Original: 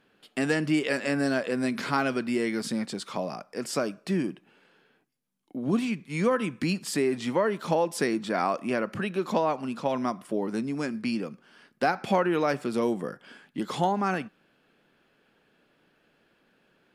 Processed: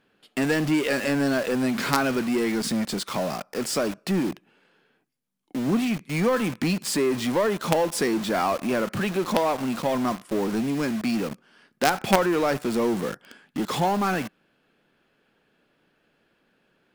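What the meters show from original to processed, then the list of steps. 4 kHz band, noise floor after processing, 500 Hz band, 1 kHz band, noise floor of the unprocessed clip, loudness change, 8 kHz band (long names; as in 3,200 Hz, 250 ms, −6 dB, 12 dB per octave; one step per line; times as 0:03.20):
+6.0 dB, −69 dBFS, +3.0 dB, +3.0 dB, −68 dBFS, +3.5 dB, +7.0 dB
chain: low-shelf EQ 91 Hz +2 dB
in parallel at −4.5 dB: log-companded quantiser 2 bits
on the sum: level −1 dB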